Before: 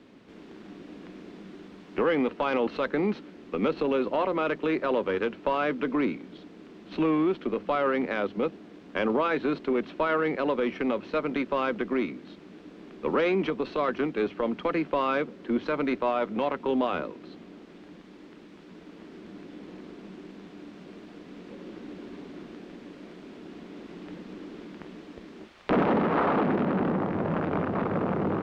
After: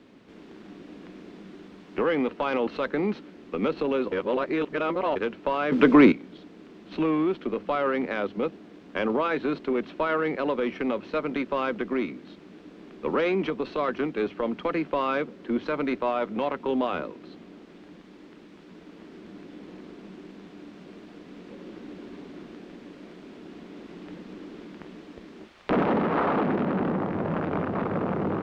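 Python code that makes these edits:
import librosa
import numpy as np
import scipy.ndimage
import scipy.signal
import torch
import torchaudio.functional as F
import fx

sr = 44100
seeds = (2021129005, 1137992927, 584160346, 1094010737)

y = fx.edit(x, sr, fx.reverse_span(start_s=4.12, length_s=1.04),
    fx.clip_gain(start_s=5.72, length_s=0.4, db=11.5), tone=tone)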